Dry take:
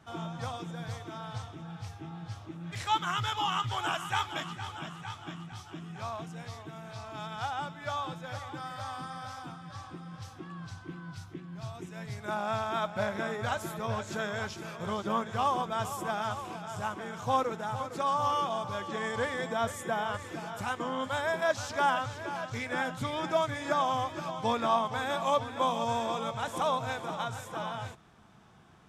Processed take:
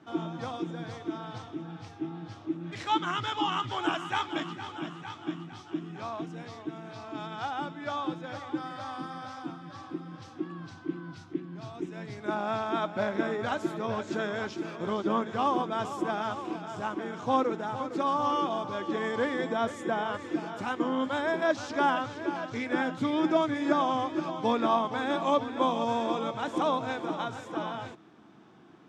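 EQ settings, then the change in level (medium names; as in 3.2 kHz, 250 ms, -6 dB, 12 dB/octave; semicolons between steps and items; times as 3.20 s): high-pass 150 Hz 12 dB/octave; low-pass 5.4 kHz 12 dB/octave; peaking EQ 310 Hz +14.5 dB 0.68 oct; 0.0 dB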